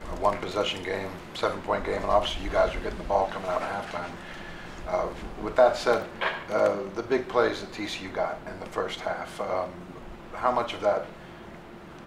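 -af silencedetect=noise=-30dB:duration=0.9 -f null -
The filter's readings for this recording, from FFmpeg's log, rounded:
silence_start: 11.04
silence_end: 12.06 | silence_duration: 1.02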